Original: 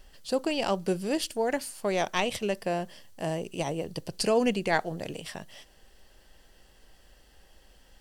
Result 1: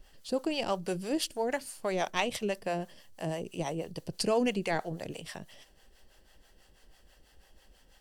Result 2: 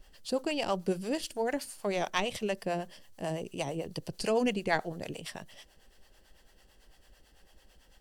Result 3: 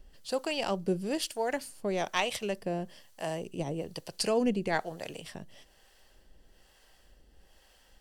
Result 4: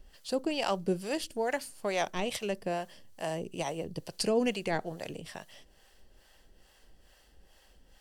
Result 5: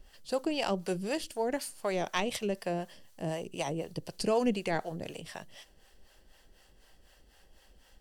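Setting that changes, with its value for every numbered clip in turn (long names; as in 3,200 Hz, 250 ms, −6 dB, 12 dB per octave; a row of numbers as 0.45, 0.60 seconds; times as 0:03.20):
two-band tremolo in antiphase, speed: 6.1, 9, 1.1, 2.3, 4 Hertz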